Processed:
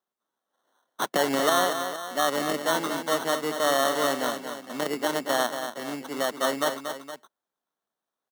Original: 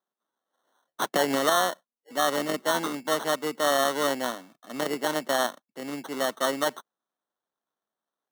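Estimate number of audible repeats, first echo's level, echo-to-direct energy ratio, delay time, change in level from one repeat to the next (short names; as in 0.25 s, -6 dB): 2, -8.0 dB, -7.0 dB, 0.233 s, -5.0 dB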